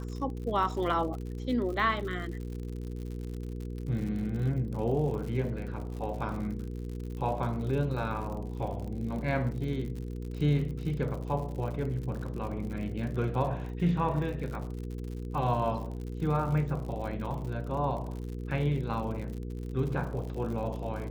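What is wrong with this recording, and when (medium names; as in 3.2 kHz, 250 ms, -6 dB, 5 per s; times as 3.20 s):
crackle 83 per s -38 dBFS
hum 60 Hz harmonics 8 -37 dBFS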